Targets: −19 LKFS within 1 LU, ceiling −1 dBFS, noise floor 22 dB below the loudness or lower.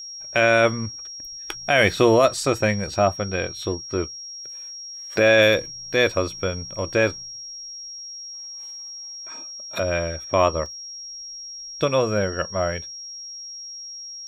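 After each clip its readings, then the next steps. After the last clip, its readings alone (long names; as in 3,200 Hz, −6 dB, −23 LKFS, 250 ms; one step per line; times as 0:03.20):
number of dropouts 1; longest dropout 1.7 ms; interfering tone 5,600 Hz; level of the tone −34 dBFS; integrated loudness −21.5 LKFS; sample peak −6.0 dBFS; target loudness −19.0 LKFS
→ repair the gap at 0:10.66, 1.7 ms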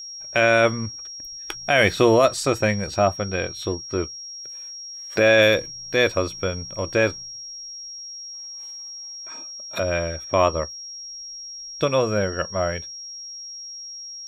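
number of dropouts 0; interfering tone 5,600 Hz; level of the tone −34 dBFS
→ notch filter 5,600 Hz, Q 30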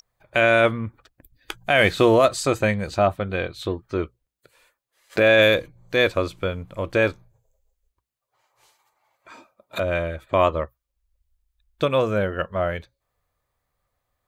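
interfering tone none found; integrated loudness −21.5 LKFS; sample peak −6.0 dBFS; target loudness −19.0 LKFS
→ level +2.5 dB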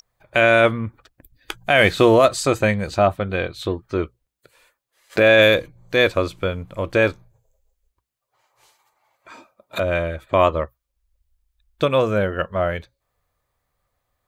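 integrated loudness −19.0 LKFS; sample peak −3.5 dBFS; background noise floor −79 dBFS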